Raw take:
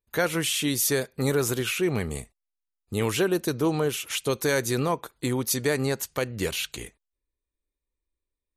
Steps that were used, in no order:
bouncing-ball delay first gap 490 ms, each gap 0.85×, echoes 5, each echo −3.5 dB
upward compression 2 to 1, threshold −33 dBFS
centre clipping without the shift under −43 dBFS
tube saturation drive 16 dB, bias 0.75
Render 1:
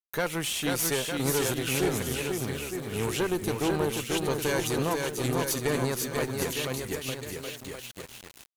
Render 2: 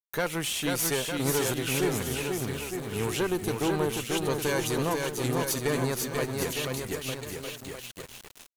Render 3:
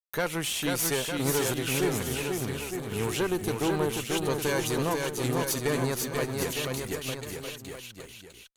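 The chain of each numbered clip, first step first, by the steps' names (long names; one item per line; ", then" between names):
bouncing-ball delay, then tube saturation, then centre clipping without the shift, then upward compression
tube saturation, then bouncing-ball delay, then centre clipping without the shift, then upward compression
centre clipping without the shift, then tube saturation, then upward compression, then bouncing-ball delay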